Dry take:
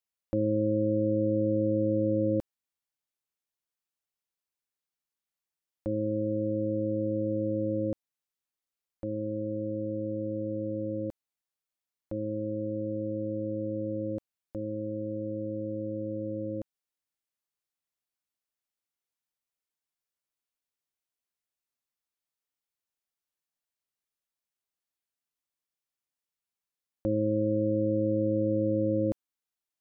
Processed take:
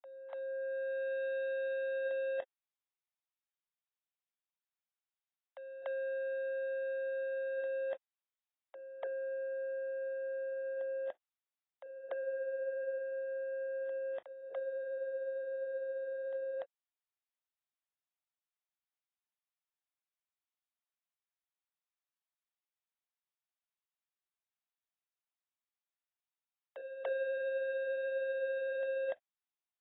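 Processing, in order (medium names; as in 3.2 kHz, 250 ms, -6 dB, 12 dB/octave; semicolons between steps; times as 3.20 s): fade-in on the opening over 1.23 s; steep high-pass 610 Hz 48 dB/octave; waveshaping leveller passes 3; reverse echo 291 ms -10.5 dB; AAC 16 kbps 22.05 kHz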